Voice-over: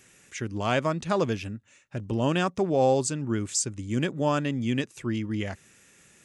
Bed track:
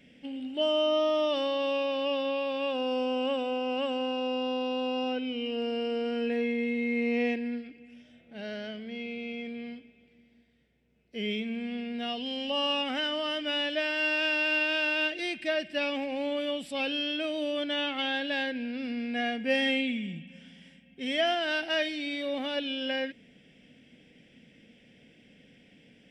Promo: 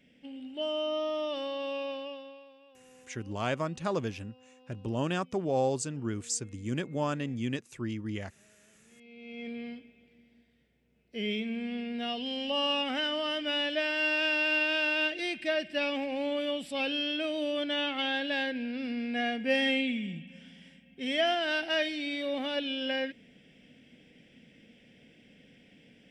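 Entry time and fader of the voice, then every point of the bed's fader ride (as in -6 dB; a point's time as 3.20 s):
2.75 s, -6.0 dB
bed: 1.91 s -6 dB
2.66 s -28.5 dB
8.76 s -28.5 dB
9.48 s -0.5 dB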